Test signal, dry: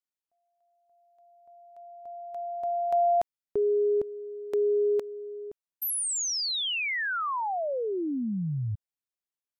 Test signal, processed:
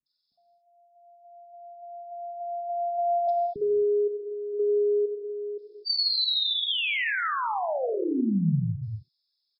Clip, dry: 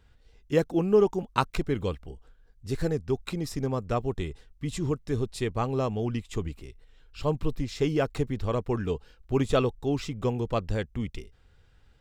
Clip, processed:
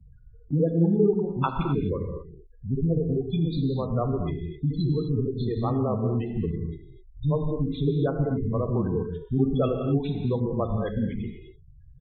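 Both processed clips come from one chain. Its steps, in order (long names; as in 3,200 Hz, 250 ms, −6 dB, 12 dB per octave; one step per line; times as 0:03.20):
hearing-aid frequency compression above 3,300 Hz 4 to 1
multiband delay without the direct sound lows, highs 60 ms, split 290 Hz
gate on every frequency bin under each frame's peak −15 dB strong
parametric band 200 Hz +9 dB 1.7 octaves
reverb whose tail is shaped and stops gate 280 ms flat, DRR 4.5 dB
multiband upward and downward compressor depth 40%
level −1.5 dB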